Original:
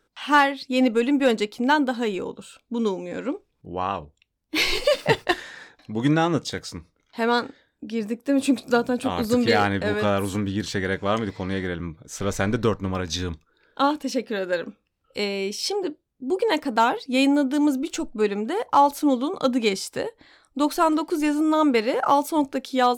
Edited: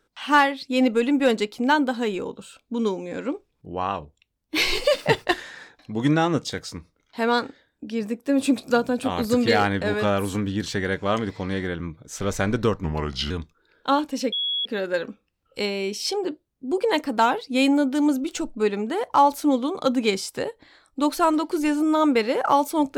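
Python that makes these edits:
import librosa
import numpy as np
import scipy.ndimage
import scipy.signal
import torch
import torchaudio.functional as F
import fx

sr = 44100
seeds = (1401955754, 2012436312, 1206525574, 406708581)

y = fx.edit(x, sr, fx.speed_span(start_s=12.84, length_s=0.38, speed=0.82),
    fx.insert_tone(at_s=14.24, length_s=0.33, hz=3350.0, db=-22.5), tone=tone)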